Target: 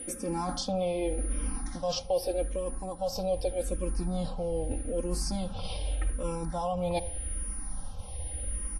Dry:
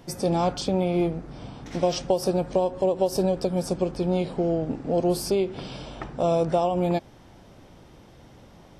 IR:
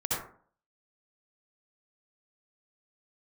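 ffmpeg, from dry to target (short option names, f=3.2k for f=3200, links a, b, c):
-filter_complex "[0:a]aeval=exprs='val(0)+0.00794*sin(2*PI*9700*n/s)':c=same,aecho=1:1:3.8:0.95,asplit=2[a][b];[1:a]atrim=start_sample=2205[c];[b][c]afir=irnorm=-1:irlink=0,volume=-29dB[d];[a][d]amix=inputs=2:normalize=0,asubboost=boost=11:cutoff=76,areverse,acompressor=threshold=-28dB:ratio=6,areverse,asplit=2[e][f];[f]afreqshift=-0.83[g];[e][g]amix=inputs=2:normalize=1,volume=3dB"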